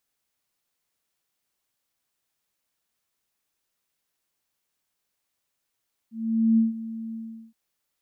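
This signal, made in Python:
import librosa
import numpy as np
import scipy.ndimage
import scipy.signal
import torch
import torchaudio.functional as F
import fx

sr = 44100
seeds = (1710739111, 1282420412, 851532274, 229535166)

y = fx.adsr_tone(sr, wave='sine', hz=225.0, attack_ms=466.0, decay_ms=152.0, sustain_db=-16.0, held_s=1.03, release_ms=391.0, level_db=-15.0)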